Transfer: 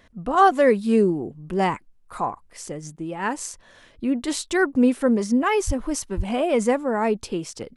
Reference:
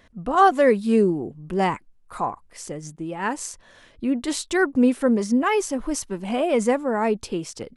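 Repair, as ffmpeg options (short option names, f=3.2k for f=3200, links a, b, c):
-filter_complex "[0:a]asplit=3[a][b][c];[a]afade=t=out:st=5.66:d=0.02[d];[b]highpass=f=140:w=0.5412,highpass=f=140:w=1.3066,afade=t=in:st=5.66:d=0.02,afade=t=out:st=5.78:d=0.02[e];[c]afade=t=in:st=5.78:d=0.02[f];[d][e][f]amix=inputs=3:normalize=0,asplit=3[g][h][i];[g]afade=t=out:st=6.16:d=0.02[j];[h]highpass=f=140:w=0.5412,highpass=f=140:w=1.3066,afade=t=in:st=6.16:d=0.02,afade=t=out:st=6.28:d=0.02[k];[i]afade=t=in:st=6.28:d=0.02[l];[j][k][l]amix=inputs=3:normalize=0"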